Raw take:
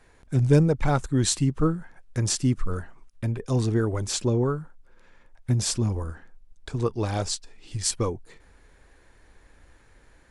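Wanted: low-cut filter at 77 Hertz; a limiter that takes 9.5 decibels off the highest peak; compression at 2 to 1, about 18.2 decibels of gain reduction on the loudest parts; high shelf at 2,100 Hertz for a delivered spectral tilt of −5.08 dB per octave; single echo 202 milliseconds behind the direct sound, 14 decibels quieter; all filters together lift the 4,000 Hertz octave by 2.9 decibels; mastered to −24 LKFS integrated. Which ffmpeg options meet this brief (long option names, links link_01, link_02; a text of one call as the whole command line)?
ffmpeg -i in.wav -af "highpass=77,highshelf=frequency=2100:gain=-5,equalizer=frequency=4000:width_type=o:gain=8.5,acompressor=threshold=-48dB:ratio=2,alimiter=level_in=9dB:limit=-24dB:level=0:latency=1,volume=-9dB,aecho=1:1:202:0.2,volume=19.5dB" out.wav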